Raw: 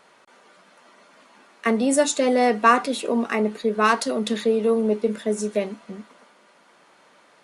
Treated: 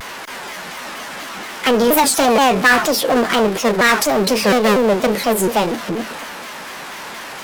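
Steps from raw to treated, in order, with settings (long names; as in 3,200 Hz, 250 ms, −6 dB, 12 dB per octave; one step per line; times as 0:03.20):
power curve on the samples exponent 0.5
formants moved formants +5 semitones
pitch modulation by a square or saw wave saw down 4.2 Hz, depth 250 cents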